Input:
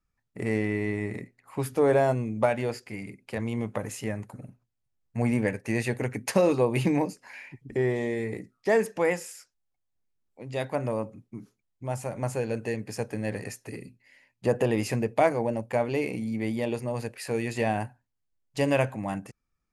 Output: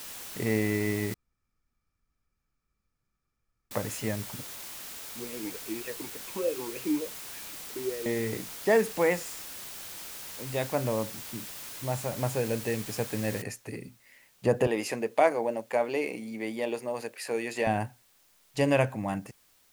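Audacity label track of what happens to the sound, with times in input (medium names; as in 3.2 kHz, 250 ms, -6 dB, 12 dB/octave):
1.140000	3.710000	room tone
4.430000	8.060000	talking filter e-u 3.4 Hz
9.190000	10.480000	steep low-pass 9.8 kHz
13.420000	13.420000	noise floor step -42 dB -64 dB
14.670000	17.670000	high-pass 330 Hz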